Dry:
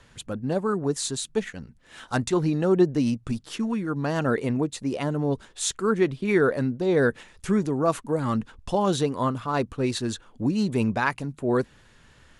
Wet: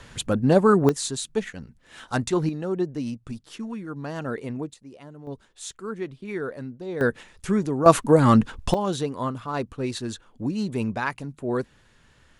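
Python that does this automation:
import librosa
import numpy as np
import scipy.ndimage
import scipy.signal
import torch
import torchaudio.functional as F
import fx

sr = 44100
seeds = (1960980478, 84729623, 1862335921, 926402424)

y = fx.gain(x, sr, db=fx.steps((0.0, 8.5), (0.89, 0.0), (2.49, -6.5), (4.74, -17.0), (5.27, -10.0), (7.01, 0.0), (7.86, 9.5), (8.74, -3.0)))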